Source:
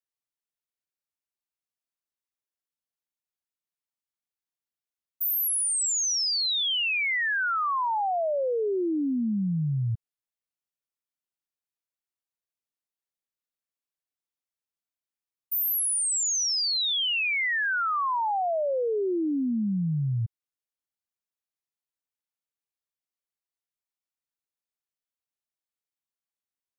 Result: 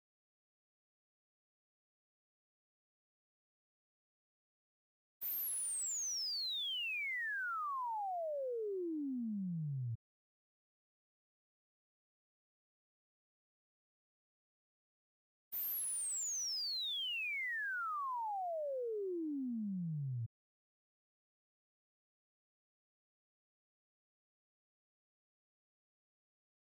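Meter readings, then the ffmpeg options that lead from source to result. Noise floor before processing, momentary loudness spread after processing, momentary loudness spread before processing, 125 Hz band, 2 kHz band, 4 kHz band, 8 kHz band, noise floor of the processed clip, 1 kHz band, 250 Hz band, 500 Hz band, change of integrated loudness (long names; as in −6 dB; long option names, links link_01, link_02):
below −85 dBFS, 5 LU, 5 LU, −13.5 dB, −13.5 dB, −13.5 dB, −13.5 dB, below −85 dBFS, −13.5 dB, −13.5 dB, −13.5 dB, −13.5 dB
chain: -af "agate=range=-33dB:threshold=-20dB:ratio=3:detection=peak,volume=-5dB" -ar 44100 -c:a adpcm_ima_wav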